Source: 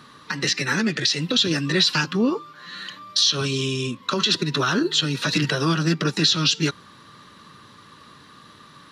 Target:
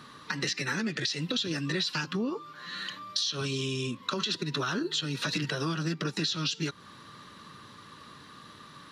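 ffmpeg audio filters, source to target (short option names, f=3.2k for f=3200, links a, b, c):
-af "acompressor=threshold=-27dB:ratio=4,volume=-2dB"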